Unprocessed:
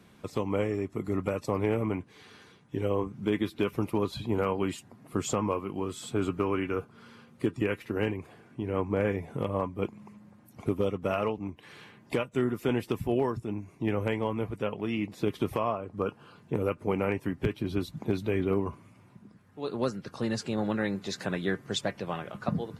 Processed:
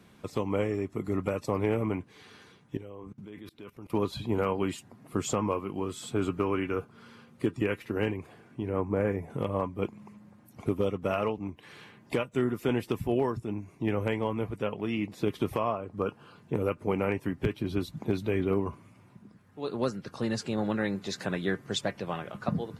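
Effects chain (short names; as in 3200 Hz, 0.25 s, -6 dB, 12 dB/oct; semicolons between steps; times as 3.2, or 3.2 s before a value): 2.77–3.9 level quantiser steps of 22 dB; 8.69–9.3 bell 3600 Hz -11.5 dB 1.1 oct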